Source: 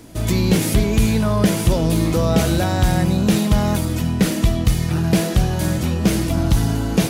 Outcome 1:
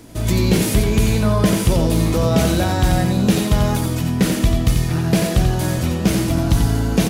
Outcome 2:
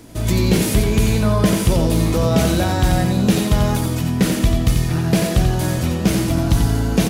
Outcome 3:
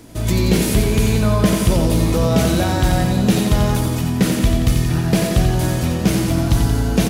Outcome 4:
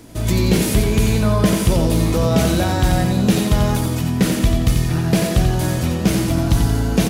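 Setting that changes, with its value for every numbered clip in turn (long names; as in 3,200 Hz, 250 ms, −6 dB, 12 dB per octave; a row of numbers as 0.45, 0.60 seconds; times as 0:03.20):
repeating echo, feedback: 17, 28, 62, 42%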